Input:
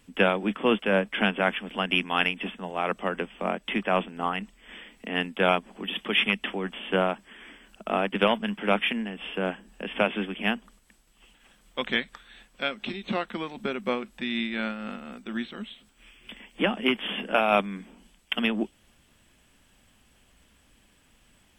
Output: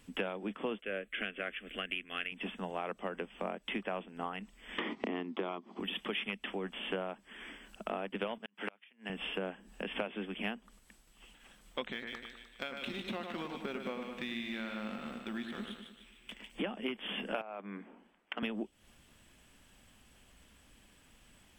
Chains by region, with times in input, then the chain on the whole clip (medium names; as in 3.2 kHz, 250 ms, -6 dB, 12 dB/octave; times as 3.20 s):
0.81–2.32 s: peaking EQ 190 Hz -11 dB 1.2 oct + static phaser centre 2.2 kHz, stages 4
4.78–5.80 s: gate -54 dBFS, range -13 dB + cabinet simulation 170–5400 Hz, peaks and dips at 240 Hz +4 dB, 350 Hz +8 dB, 520 Hz -6 dB, 1.1 kHz +7 dB, 1.6 kHz -9 dB, 2.7 kHz -7 dB + three bands compressed up and down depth 100%
8.38–9.10 s: high-pass 520 Hz 6 dB/octave + inverted gate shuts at -18 dBFS, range -34 dB
11.92–16.50 s: companding laws mixed up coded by A + compression 2:1, threshold -34 dBFS + two-band feedback delay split 2.2 kHz, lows 102 ms, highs 150 ms, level -6 dB
17.41–18.43 s: three-band isolator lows -24 dB, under 230 Hz, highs -23 dB, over 2.2 kHz + compression 12:1, threshold -29 dBFS
whole clip: dynamic bell 460 Hz, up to +4 dB, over -33 dBFS, Q 0.86; compression 6:1, threshold -34 dBFS; trim -1 dB